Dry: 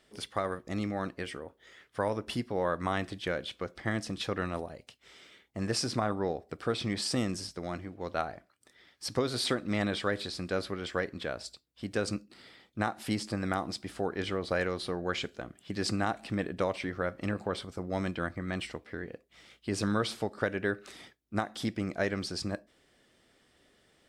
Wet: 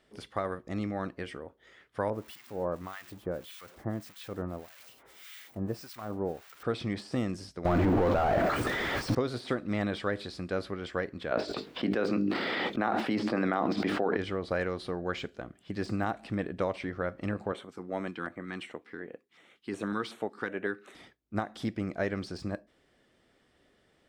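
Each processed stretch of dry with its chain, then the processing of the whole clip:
0:02.10–0:06.63: spike at every zero crossing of −22.5 dBFS + two-band tremolo in antiphase 1.7 Hz, depth 100%, crossover 1,100 Hz
0:07.65–0:09.15: low-shelf EQ 280 Hz −10 dB + power curve on the samples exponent 0.35 + envelope flattener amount 100%
0:11.31–0:14.17: three-way crossover with the lows and the highs turned down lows −24 dB, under 180 Hz, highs −16 dB, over 4,600 Hz + mains-hum notches 50/100/150/200/250/300/350/400/450 Hz + envelope flattener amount 100%
0:17.52–0:20.95: high-pass filter 230 Hz + auto-filter notch square 2.7 Hz 600–4,900 Hz
whole clip: de-essing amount 95%; high-shelf EQ 3,400 Hz −8.5 dB

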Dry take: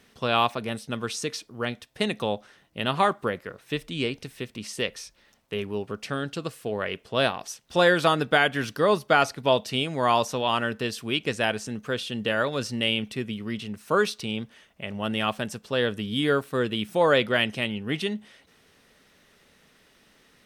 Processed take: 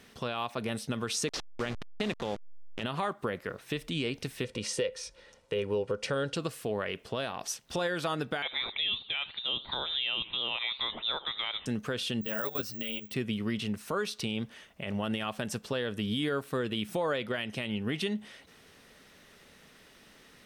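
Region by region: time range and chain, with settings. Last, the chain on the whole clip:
0:01.28–0:02.83: hold until the input has moved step −31 dBFS + low-pass filter 6,000 Hz
0:04.44–0:06.36: low-pass filter 9,900 Hz 24 dB per octave + parametric band 510 Hz +13 dB 0.22 octaves + comb filter 2.1 ms, depth 35%
0:08.42–0:11.66: voice inversion scrambler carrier 3,800 Hz + feedback echo with a swinging delay time 80 ms, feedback 39%, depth 203 cents, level −24 dB
0:12.21–0:13.14: output level in coarse steps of 14 dB + bad sample-rate conversion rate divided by 2×, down none, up zero stuff + string-ensemble chorus
whole clip: downward compressor 6 to 1, threshold −29 dBFS; brickwall limiter −24 dBFS; level +2.5 dB

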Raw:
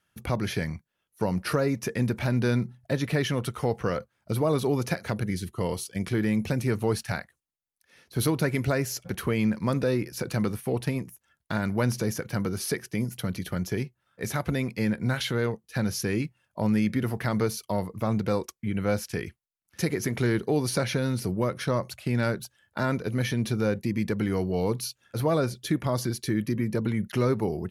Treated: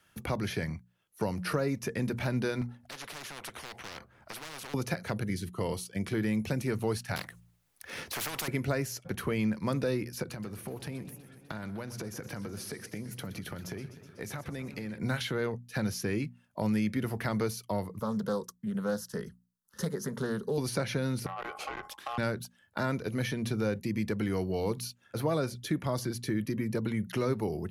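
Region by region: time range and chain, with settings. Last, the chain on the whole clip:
0:02.61–0:04.74: high-shelf EQ 2,400 Hz −12 dB + hard clipping −23 dBFS + every bin compressed towards the loudest bin 10 to 1
0:07.16–0:08.48: leveller curve on the samples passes 1 + hum removal 57.8 Hz, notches 3 + every bin compressed towards the loudest bin 10 to 1
0:10.23–0:14.98: downward compressor 8 to 1, threshold −34 dBFS + feedback echo with a swinging delay time 124 ms, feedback 65%, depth 145 cents, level −14.5 dB
0:17.99–0:20.58: phaser with its sweep stopped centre 470 Hz, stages 8 + highs frequency-modulated by the lows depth 0.24 ms
0:21.26–0:22.18: ring modulation 950 Hz + downward compressor 2 to 1, threshold −33 dBFS + saturating transformer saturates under 1,600 Hz
whole clip: mains-hum notches 60/120/180/240 Hz; multiband upward and downward compressor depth 40%; level −4 dB

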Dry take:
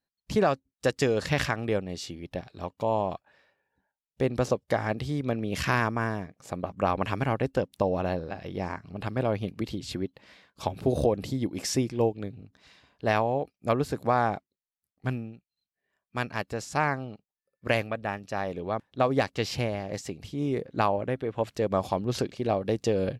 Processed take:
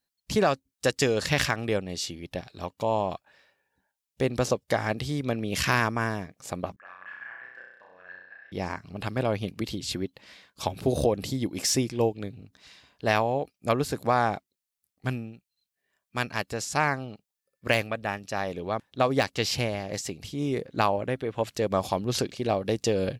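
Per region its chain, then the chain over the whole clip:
0:06.76–0:08.52: resonant band-pass 1,700 Hz, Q 18 + flutter between parallel walls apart 5.6 metres, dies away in 0.91 s
whole clip: de-essing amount 55%; high-shelf EQ 2,600 Hz +8.5 dB

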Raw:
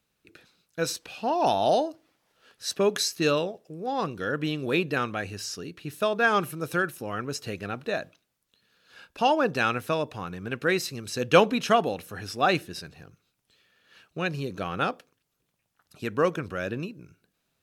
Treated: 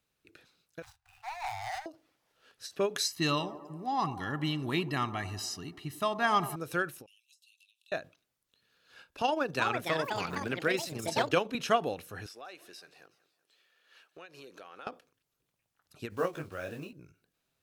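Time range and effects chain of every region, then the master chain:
0:00.82–0:01.86: running median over 41 samples + Chebyshev band-stop filter 110–760 Hz, order 5
0:03.05–0:06.56: comb filter 1 ms, depth 85% + delay with a band-pass on its return 96 ms, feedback 66%, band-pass 530 Hz, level −12 dB
0:07.06–0:07.92: Chebyshev high-pass with heavy ripple 2,600 Hz, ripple 6 dB + downward compressor 20 to 1, threshold −54 dBFS
0:09.21–0:11.55: amplitude modulation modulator 24 Hz, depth 30% + delay with pitch and tempo change per echo 381 ms, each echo +5 semitones, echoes 2, each echo −6 dB + multiband upward and downward compressor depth 70%
0:12.26–0:14.87: high-pass filter 430 Hz + downward compressor 4 to 1, threshold −42 dBFS + feedback echo with a swinging delay time 187 ms, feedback 50%, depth 150 cents, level −20 dB
0:16.10–0:16.93: one scale factor per block 5 bits + parametric band 730 Hz +5.5 dB 0.53 octaves + micro pitch shift up and down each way 35 cents
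whole clip: parametric band 200 Hz −5 dB 0.38 octaves; every ending faded ahead of time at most 270 dB per second; level −4.5 dB

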